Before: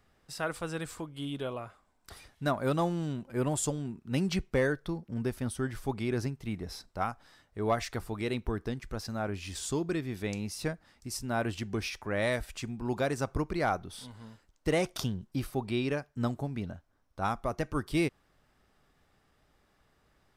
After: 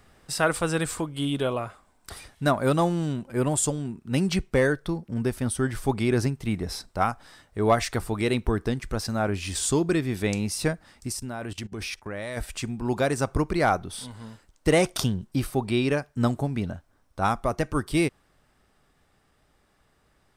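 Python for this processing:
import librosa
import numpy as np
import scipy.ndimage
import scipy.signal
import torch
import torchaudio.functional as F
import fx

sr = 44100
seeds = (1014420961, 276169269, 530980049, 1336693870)

y = fx.rider(x, sr, range_db=5, speed_s=2.0)
y = fx.peak_eq(y, sr, hz=8700.0, db=6.0, octaves=0.3)
y = fx.level_steps(y, sr, step_db=20, at=(11.11, 12.36), fade=0.02)
y = y * 10.0 ** (6.5 / 20.0)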